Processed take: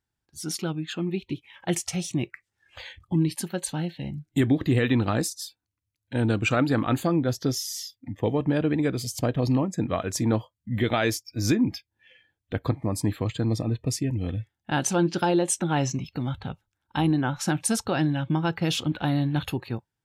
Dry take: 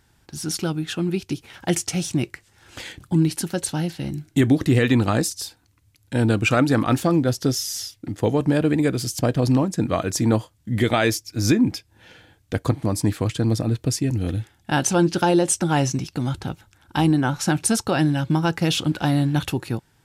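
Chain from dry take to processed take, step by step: spectral noise reduction 20 dB; gain -4.5 dB

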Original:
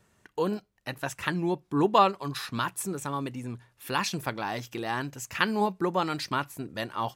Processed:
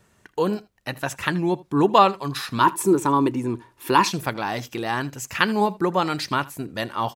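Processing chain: 2.6–4.1 small resonant body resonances 340/950 Hz, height 16 dB -> 13 dB, ringing for 30 ms; on a send: echo 79 ms -21.5 dB; on the sum: gain +5.5 dB

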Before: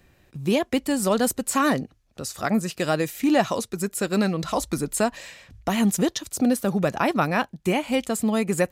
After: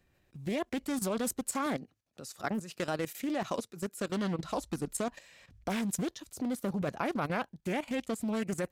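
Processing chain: 1.66–4.1 HPF 120 Hz 12 dB/oct; level quantiser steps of 13 dB; Doppler distortion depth 0.27 ms; gain -5.5 dB

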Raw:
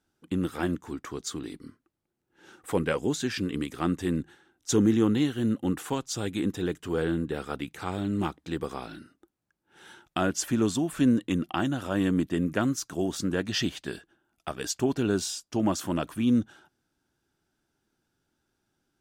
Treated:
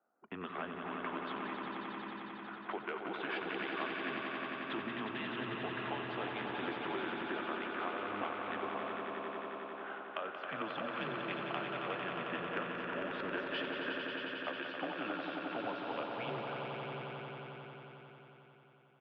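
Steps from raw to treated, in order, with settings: mistuned SSB -100 Hz 540–3300 Hz; low-pass opened by the level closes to 2300 Hz, open at -32 dBFS; compressor 6:1, threshold -46 dBFS, peak gain reduction 19.5 dB; echo 0.615 s -10 dB; low-pass opened by the level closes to 950 Hz, open at -39 dBFS; swelling echo 90 ms, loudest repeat 5, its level -6.5 dB; gain +6.5 dB

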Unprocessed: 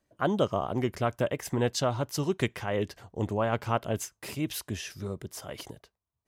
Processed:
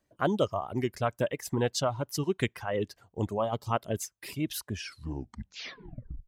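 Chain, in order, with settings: tape stop at the end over 1.56 s; reverb removal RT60 1.8 s; spectral gain 3.41–3.72, 1300–2800 Hz -16 dB

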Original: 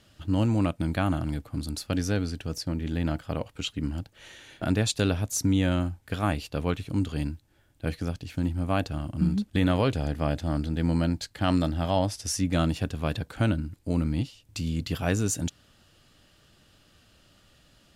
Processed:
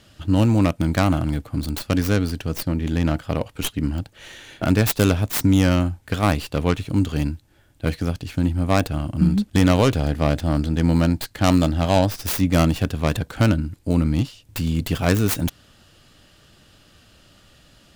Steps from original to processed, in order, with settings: tracing distortion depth 0.45 ms; gain +7 dB

